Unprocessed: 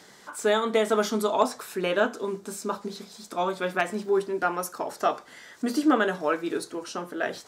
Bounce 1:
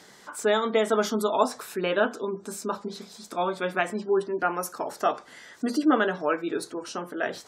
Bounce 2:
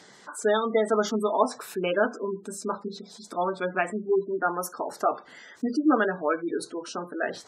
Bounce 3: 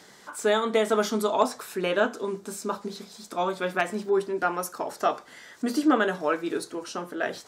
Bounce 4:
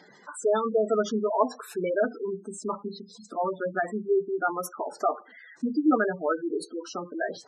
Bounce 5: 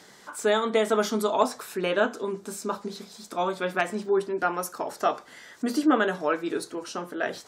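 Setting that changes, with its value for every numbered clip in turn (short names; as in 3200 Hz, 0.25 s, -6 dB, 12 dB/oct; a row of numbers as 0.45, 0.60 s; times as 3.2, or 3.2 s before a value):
spectral gate, under each frame's peak: -35, -20, -60, -10, -50 dB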